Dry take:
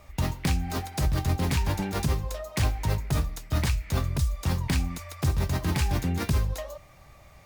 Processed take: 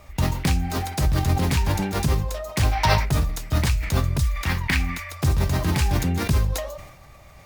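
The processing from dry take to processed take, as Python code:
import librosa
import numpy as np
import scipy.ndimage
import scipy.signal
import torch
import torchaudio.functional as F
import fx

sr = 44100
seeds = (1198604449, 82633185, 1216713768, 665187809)

y = fx.spec_box(x, sr, start_s=2.72, length_s=0.33, low_hz=550.0, high_hz=6100.0, gain_db=12)
y = fx.graphic_eq(y, sr, hz=(125, 500, 2000, 8000), db=(-7, -6, 11, -4), at=(4.23, 5.11))
y = fx.sustainer(y, sr, db_per_s=63.0)
y = y * 10.0 ** (4.0 / 20.0)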